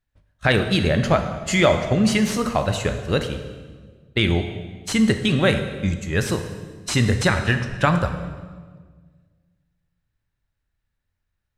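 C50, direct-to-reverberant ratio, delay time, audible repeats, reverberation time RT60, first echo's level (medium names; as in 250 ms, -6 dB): 8.5 dB, 6.5 dB, no echo, no echo, 1.6 s, no echo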